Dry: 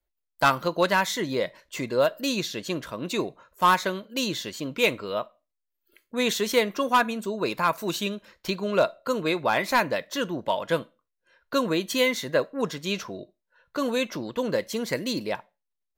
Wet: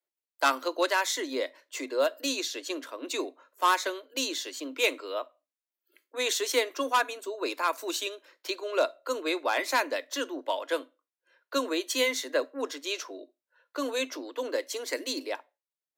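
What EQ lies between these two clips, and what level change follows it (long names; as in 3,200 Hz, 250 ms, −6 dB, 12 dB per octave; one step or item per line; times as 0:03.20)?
Chebyshev high-pass filter 260 Hz, order 10
dynamic equaliser 7,200 Hz, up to +7 dB, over −45 dBFS, Q 0.71
−4.0 dB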